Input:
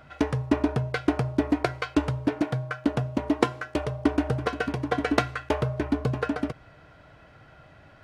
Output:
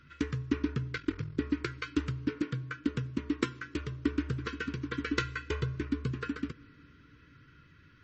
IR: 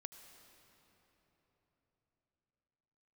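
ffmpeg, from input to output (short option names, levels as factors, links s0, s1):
-filter_complex "[0:a]asuperstop=centerf=700:order=4:qfactor=0.78,asettb=1/sr,asplit=3[s0][s1][s2];[s0]atrim=end=2.234[s3];[s1]atrim=start=2.23:end=3.05,asetpts=PTS-STARTPTS,afade=t=in:d=0.004:c=qsin,afade=t=out:st=0.816:d=0.004:c=qsin,adynamicequalizer=threshold=0.00501:dfrequency=480:dqfactor=4.3:tfrequency=480:tqfactor=4.3:attack=5:release=100:ratio=0.375:range=2.5:mode=boostabove:tftype=bell[s4];[s2]atrim=start=3.046[s5];[s3][s4]acrossfade=d=0.004:c1=hsin:c2=qsin[s6];[s6][s5]acrossfade=d=0.004:c1=qsin:c2=hsin,asettb=1/sr,asplit=3[s7][s8][s9];[s7]atrim=end=5.184[s10];[s8]atrim=start=5.18:end=5.76,asetpts=PTS-STARTPTS,afade=t=in:d=0.004:c=qsin,afade=t=out:st=0.576:d=0.004:c=qsin,aecho=1:1:2:0.68,atrim=end_sample=25578[s11];[s9]atrim=start=5.756[s12];[s10][s11]acrossfade=d=0.004:c1=hsin:c2=qsin[s13];[s13][s12]acrossfade=d=0.004:c1=qsin:c2=hsin,asplit=2[s14][s15];[1:a]atrim=start_sample=2205,adelay=12[s16];[s15][s16]afir=irnorm=-1:irlink=0,volume=0.316[s17];[s14][s17]amix=inputs=2:normalize=0,asettb=1/sr,asplit=3[s18][s19][s20];[s18]atrim=end=0.964[s21];[s19]atrim=start=0.96:end=1.39,asetpts=PTS-STARTPTS,afade=t=in:d=0.004:c=qsin,afade=t=out:st=0.426:d=0.004:c=qsin,aeval=exprs='val(0)*sin(2*PI*21*n/s)':c=same[s22];[s20]atrim=start=1.386[s23];[s21][s22]acrossfade=d=0.004:c1=hsin:c2=qsin[s24];[s24][s23]acrossfade=d=0.004:c1=qsin:c2=hsin,volume=0.562" -ar 32000 -c:a libmp3lame -b:a 32k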